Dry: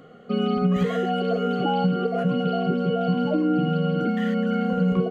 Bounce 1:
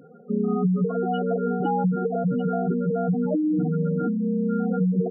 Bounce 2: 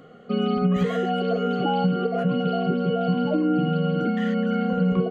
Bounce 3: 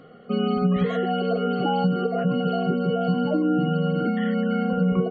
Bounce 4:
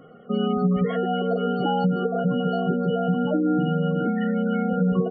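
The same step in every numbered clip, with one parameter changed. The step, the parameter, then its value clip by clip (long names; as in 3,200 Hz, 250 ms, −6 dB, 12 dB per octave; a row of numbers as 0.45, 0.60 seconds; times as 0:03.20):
gate on every frequency bin, under each frame's peak: −10, −60, −40, −25 decibels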